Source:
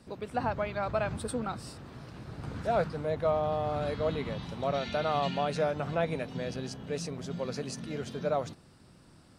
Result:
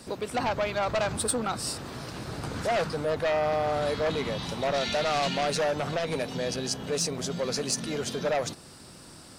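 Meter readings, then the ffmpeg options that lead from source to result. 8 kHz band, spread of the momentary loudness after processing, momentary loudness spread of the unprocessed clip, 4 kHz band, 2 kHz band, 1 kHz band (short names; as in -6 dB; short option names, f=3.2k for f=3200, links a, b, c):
+15.0 dB, 10 LU, 11 LU, +10.5 dB, +6.5 dB, +3.0 dB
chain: -filter_complex "[0:a]asplit=2[a][b];[b]aeval=exprs='0.168*sin(PI/2*3.98*val(0)/0.168)':c=same,volume=-8.5dB[c];[a][c]amix=inputs=2:normalize=0,alimiter=limit=-22dB:level=0:latency=1:release=260,bass=f=250:g=-6,treble=f=4k:g=8"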